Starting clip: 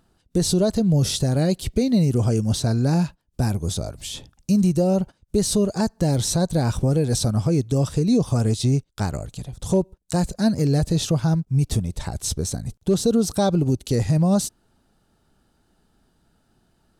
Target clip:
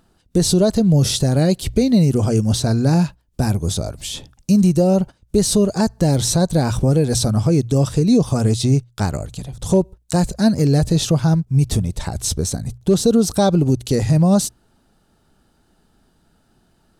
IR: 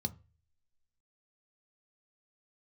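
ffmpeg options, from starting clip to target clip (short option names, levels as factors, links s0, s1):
-af "bandreject=f=60:t=h:w=6,bandreject=f=120:t=h:w=6,volume=1.68"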